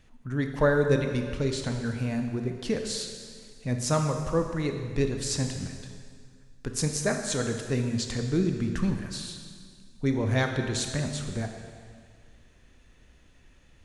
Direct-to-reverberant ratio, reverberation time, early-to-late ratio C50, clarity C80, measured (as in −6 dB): 4.5 dB, 1.9 s, 5.5 dB, 7.0 dB